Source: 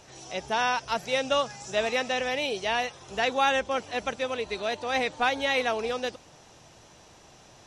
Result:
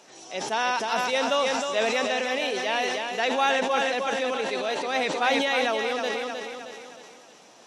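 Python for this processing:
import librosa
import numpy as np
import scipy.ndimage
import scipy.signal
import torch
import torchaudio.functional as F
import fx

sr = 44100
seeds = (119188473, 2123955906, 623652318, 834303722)

y = scipy.signal.sosfilt(scipy.signal.butter(4, 200.0, 'highpass', fs=sr, output='sos'), x)
y = fx.echo_feedback(y, sr, ms=312, feedback_pct=48, wet_db=-6.5)
y = fx.sustainer(y, sr, db_per_s=23.0)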